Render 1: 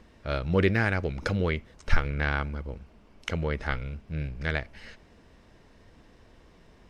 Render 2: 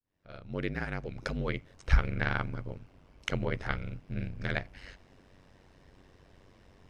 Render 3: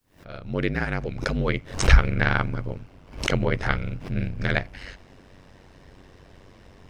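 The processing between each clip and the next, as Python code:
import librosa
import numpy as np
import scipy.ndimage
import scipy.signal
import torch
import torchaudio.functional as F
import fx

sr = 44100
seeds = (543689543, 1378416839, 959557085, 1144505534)

y1 = fx.fade_in_head(x, sr, length_s=1.91)
y1 = y1 * np.sin(2.0 * np.pi * 47.0 * np.arange(len(y1)) / sr)
y2 = fx.pre_swell(y1, sr, db_per_s=130.0)
y2 = y2 * 10.0 ** (8.5 / 20.0)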